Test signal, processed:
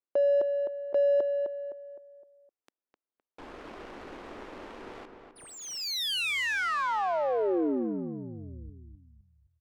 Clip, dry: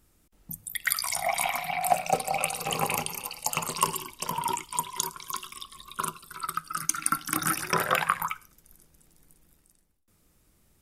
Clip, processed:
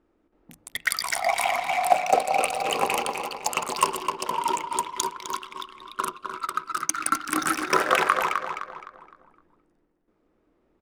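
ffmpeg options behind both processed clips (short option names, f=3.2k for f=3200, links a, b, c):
-filter_complex "[0:a]lowshelf=f=210:t=q:w=1.5:g=-12.5,asplit=2[a][b];[b]adelay=257,lowpass=f=3.9k:p=1,volume=-5.5dB,asplit=2[c][d];[d]adelay=257,lowpass=f=3.9k:p=1,volume=0.42,asplit=2[e][f];[f]adelay=257,lowpass=f=3.9k:p=1,volume=0.42,asplit=2[g][h];[h]adelay=257,lowpass=f=3.9k:p=1,volume=0.42,asplit=2[i][j];[j]adelay=257,lowpass=f=3.9k:p=1,volume=0.42[k];[a][c][e][g][i][k]amix=inputs=6:normalize=0,adynamicsmooth=sensitivity=7.5:basefreq=1.5k,volume=3.5dB"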